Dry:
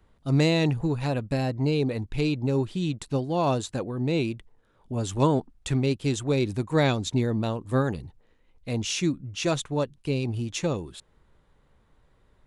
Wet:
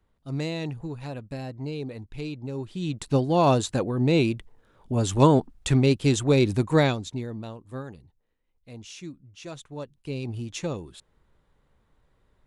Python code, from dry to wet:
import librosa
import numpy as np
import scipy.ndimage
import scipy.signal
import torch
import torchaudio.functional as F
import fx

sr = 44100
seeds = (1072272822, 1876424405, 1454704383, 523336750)

y = fx.gain(x, sr, db=fx.line((2.57, -8.5), (3.14, 4.5), (6.72, 4.5), (7.09, -7.0), (8.04, -14.0), (9.49, -14.0), (10.29, -3.5)))